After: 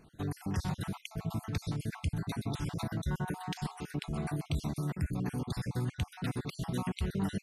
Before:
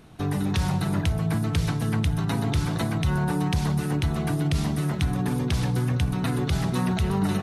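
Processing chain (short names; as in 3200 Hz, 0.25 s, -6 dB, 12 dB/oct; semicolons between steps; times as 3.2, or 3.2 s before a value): random spectral dropouts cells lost 43%; 3.2–4.28 de-hum 416.7 Hz, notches 29; gain -8 dB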